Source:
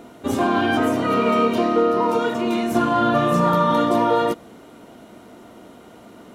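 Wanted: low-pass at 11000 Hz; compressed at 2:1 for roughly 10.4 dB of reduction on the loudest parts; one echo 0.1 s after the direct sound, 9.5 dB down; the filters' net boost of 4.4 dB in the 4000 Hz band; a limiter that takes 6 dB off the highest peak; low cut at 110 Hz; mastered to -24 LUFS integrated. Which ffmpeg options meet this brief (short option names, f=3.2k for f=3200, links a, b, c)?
-af "highpass=110,lowpass=11k,equalizer=f=4k:t=o:g=6,acompressor=threshold=-34dB:ratio=2,alimiter=limit=-22.5dB:level=0:latency=1,aecho=1:1:100:0.335,volume=7dB"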